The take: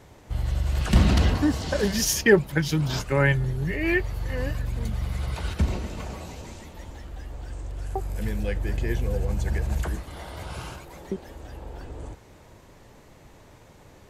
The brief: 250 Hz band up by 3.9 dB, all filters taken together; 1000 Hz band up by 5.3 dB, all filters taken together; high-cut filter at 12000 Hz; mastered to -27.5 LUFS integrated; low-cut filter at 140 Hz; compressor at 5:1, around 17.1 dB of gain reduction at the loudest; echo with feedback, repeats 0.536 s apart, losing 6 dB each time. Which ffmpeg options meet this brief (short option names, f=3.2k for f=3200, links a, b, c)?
-af "highpass=140,lowpass=12k,equalizer=f=250:t=o:g=6,equalizer=f=1k:t=o:g=6.5,acompressor=threshold=-28dB:ratio=5,aecho=1:1:536|1072|1608|2144|2680|3216:0.501|0.251|0.125|0.0626|0.0313|0.0157,volume=5.5dB"